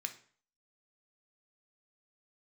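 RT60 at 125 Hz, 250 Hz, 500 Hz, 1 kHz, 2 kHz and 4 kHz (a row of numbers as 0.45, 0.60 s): 0.50, 0.45, 0.45, 0.50, 0.45, 0.40 s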